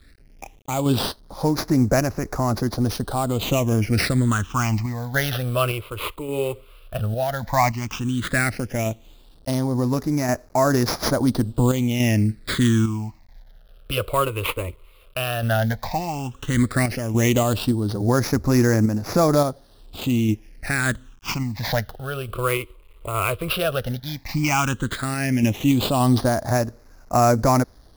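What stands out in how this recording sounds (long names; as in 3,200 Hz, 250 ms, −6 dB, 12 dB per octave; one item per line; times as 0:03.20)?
aliases and images of a low sample rate 8,300 Hz, jitter 20%
sample-and-hold tremolo
a quantiser's noise floor 10 bits, dither none
phaser sweep stages 8, 0.12 Hz, lowest notch 220–3,100 Hz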